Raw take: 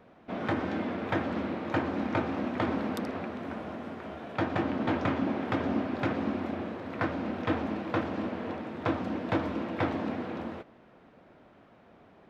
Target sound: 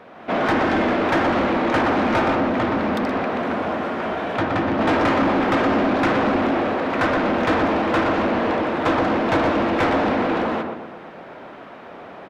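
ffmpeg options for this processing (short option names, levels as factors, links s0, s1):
-filter_complex "[0:a]highshelf=f=3400:g=7,asettb=1/sr,asplit=3[s0][s1][s2];[s0]atrim=end=2.344[s3];[s1]atrim=start=2.34:end=4.79,asetpts=PTS-STARTPTS,afade=t=in:d=0.004:c=qsin,afade=t=out:st=2.446:d=0.004:c=qsin,acrossover=split=210[s4][s5];[s5]acompressor=threshold=0.01:ratio=2[s6];[s4][s6]amix=inputs=2:normalize=0[s7];[s2]atrim=start=4.786[s8];[s3][s7]acrossfade=d=0.004:c1=hsin:c2=qsin[s9];[s9][s8]acrossfade=d=0.004:c1=qsin:c2=hsin,lowshelf=f=61:g=7,asplit=2[s10][s11];[s11]adelay=122,lowpass=f=1400:p=1,volume=0.596,asplit=2[s12][s13];[s13]adelay=122,lowpass=f=1400:p=1,volume=0.47,asplit=2[s14][s15];[s15]adelay=122,lowpass=f=1400:p=1,volume=0.47,asplit=2[s16][s17];[s17]adelay=122,lowpass=f=1400:p=1,volume=0.47,asplit=2[s18][s19];[s19]adelay=122,lowpass=f=1400:p=1,volume=0.47,asplit=2[s20][s21];[s21]adelay=122,lowpass=f=1400:p=1,volume=0.47[s22];[s10][s12][s14][s16][s18][s20][s22]amix=inputs=7:normalize=0,dynaudnorm=f=120:g=3:m=1.78,asplit=2[s23][s24];[s24]highpass=f=720:p=1,volume=14.1,asoftclip=type=tanh:threshold=0.316[s25];[s23][s25]amix=inputs=2:normalize=0,lowpass=f=1600:p=1,volume=0.501"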